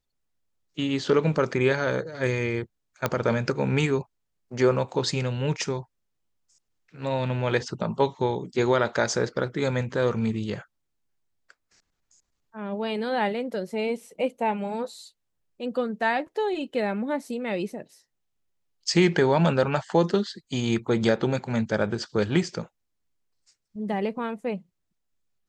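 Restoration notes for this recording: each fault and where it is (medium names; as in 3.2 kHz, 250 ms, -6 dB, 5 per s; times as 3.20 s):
3.06 s: pop -9 dBFS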